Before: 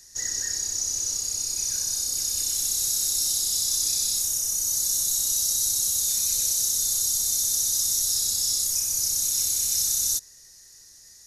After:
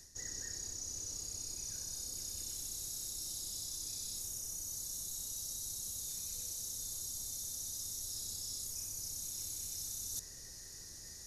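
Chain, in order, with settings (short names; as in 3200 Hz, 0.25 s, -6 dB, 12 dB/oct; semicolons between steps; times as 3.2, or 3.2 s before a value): tilt shelf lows +5.5 dB, about 790 Hz; reverse; compressor 6:1, threshold -46 dBFS, peak gain reduction 18.5 dB; reverse; gain +4.5 dB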